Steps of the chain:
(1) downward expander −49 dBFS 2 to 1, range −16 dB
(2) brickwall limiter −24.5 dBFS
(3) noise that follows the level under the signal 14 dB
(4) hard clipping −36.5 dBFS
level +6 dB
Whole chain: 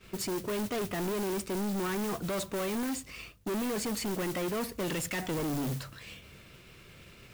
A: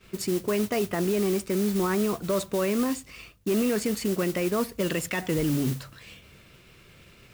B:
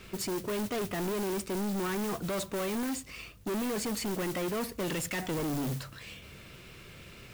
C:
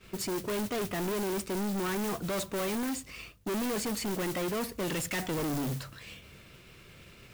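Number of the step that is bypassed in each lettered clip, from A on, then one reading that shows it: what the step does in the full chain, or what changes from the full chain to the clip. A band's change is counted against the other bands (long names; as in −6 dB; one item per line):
4, distortion level −6 dB
1, change in momentary loudness spread −3 LU
2, average gain reduction 2.0 dB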